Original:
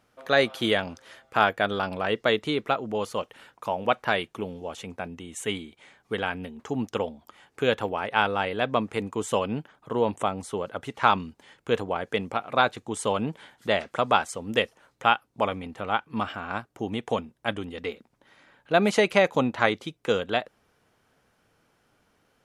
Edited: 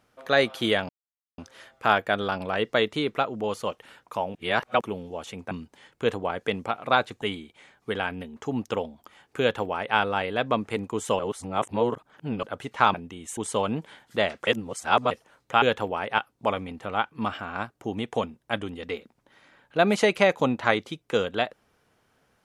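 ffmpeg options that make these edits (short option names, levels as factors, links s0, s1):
-filter_complex "[0:a]asplit=14[s0][s1][s2][s3][s4][s5][s6][s7][s8][s9][s10][s11][s12][s13];[s0]atrim=end=0.89,asetpts=PTS-STARTPTS,afade=t=out:st=0.886:d=0.004:c=hsin,apad=pad_dur=0.49[s14];[s1]atrim=start=0.89:end=3.862,asetpts=PTS-STARTPTS,afade=t=in:d=0.004:c=hsin[s15];[s2]atrim=start=3.858:end=4.322,asetpts=PTS-STARTPTS,areverse[s16];[s3]atrim=start=4.318:end=5.022[s17];[s4]atrim=start=11.168:end=12.882[s18];[s5]atrim=start=5.448:end=9.422[s19];[s6]atrim=start=9.418:end=10.662,asetpts=PTS-STARTPTS,areverse[s20];[s7]atrim=start=10.658:end=11.172[s21];[s8]atrim=start=5.018:end=5.452[s22];[s9]atrim=start=12.878:end=13.982[s23];[s10]atrim=start=13.978:end=14.622,asetpts=PTS-STARTPTS,areverse[s24];[s11]atrim=start=14.618:end=15.132[s25];[s12]atrim=start=7.628:end=8.192[s26];[s13]atrim=start=15.128[s27];[s14][s15]concat=n=2:v=0:a=1[s28];[s28][s16]acrossfade=d=0.004:c1=hsin:c2=hsin[s29];[s29][s17]acrossfade=d=0.004:c1=hsin:c2=hsin[s30];[s30][s18]acrossfade=d=0.004:c1=hsin:c2=hsin[s31];[s31][s19]acrossfade=d=0.004:c1=hsin:c2=hsin[s32];[s32][s20]acrossfade=d=0.004:c1=hsin:c2=hsin[s33];[s33][s21]acrossfade=d=0.004:c1=hsin:c2=hsin[s34];[s34][s22]acrossfade=d=0.004:c1=hsin:c2=hsin[s35];[s35][s23]acrossfade=d=0.004:c1=hsin:c2=hsin[s36];[s36][s24]acrossfade=d=0.004:c1=hsin:c2=hsin[s37];[s37][s25]acrossfade=d=0.004:c1=hsin:c2=hsin[s38];[s38][s26]acrossfade=d=0.004:c1=hsin:c2=hsin[s39];[s39][s27]acrossfade=d=0.004:c1=hsin:c2=hsin"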